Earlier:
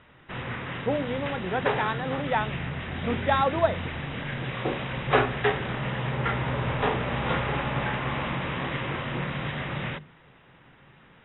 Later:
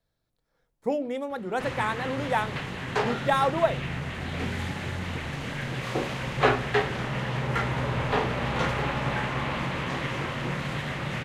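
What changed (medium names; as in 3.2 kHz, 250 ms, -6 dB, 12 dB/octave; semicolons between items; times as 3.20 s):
background: entry +1.30 s; master: remove brick-wall FIR low-pass 3.9 kHz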